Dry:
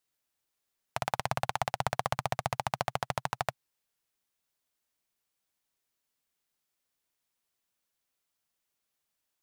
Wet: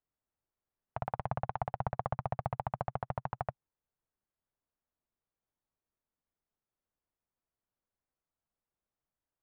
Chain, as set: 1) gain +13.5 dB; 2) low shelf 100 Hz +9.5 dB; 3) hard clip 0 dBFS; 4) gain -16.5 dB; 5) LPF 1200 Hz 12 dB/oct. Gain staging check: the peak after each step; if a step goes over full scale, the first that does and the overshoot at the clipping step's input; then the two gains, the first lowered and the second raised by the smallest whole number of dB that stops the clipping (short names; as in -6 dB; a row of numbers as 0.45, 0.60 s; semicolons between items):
+3.5, +4.0, 0.0, -16.5, -17.5 dBFS; step 1, 4.0 dB; step 1 +9.5 dB, step 4 -12.5 dB